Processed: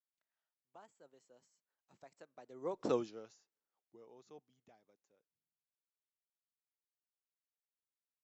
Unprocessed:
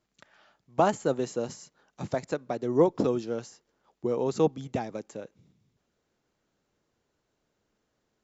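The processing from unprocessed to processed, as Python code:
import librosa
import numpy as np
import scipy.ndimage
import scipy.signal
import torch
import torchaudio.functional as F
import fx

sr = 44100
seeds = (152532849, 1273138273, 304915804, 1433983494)

y = fx.doppler_pass(x, sr, speed_mps=17, closest_m=1.0, pass_at_s=2.94)
y = fx.low_shelf(y, sr, hz=320.0, db=-12.0)
y = y * librosa.db_to_amplitude(-1.5)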